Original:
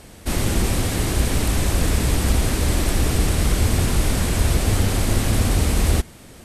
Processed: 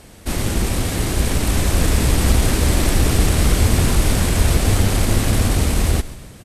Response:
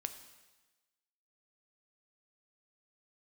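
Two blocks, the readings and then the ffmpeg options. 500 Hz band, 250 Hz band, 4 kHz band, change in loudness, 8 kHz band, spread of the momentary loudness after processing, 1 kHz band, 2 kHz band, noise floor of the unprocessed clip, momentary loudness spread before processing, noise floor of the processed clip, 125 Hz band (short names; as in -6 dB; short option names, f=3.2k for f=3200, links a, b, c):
+2.5 dB, +2.5 dB, +2.5 dB, +2.5 dB, +2.5 dB, 5 LU, +2.5 dB, +2.5 dB, -43 dBFS, 2 LU, -41 dBFS, +2.5 dB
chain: -filter_complex "[0:a]dynaudnorm=f=600:g=5:m=5dB,asplit=6[a][b][c][d][e][f];[b]adelay=136,afreqshift=-57,volume=-16.5dB[g];[c]adelay=272,afreqshift=-114,volume=-22dB[h];[d]adelay=408,afreqshift=-171,volume=-27.5dB[i];[e]adelay=544,afreqshift=-228,volume=-33dB[j];[f]adelay=680,afreqshift=-285,volume=-38.6dB[k];[a][g][h][i][j][k]amix=inputs=6:normalize=0,aeval=exprs='0.794*(cos(1*acos(clip(val(0)/0.794,-1,1)))-cos(1*PI/2))+0.0158*(cos(8*acos(clip(val(0)/0.794,-1,1)))-cos(8*PI/2))':c=same"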